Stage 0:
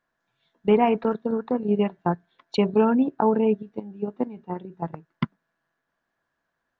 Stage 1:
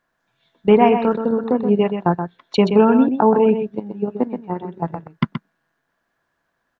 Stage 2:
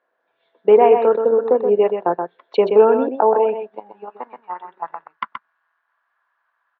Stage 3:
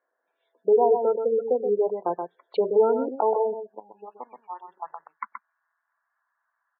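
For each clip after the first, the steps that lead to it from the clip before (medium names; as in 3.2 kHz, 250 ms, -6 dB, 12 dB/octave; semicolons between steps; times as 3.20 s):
delay 126 ms -8 dB; trim +6 dB
in parallel at 0 dB: peak limiter -9.5 dBFS, peak gain reduction 8 dB; on the sum: high-pass sweep 470 Hz -> 1.1 kHz, 3.05–4.29 s; distance through air 300 m; trim -5.5 dB
spectral gate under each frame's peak -20 dB strong; trim -7.5 dB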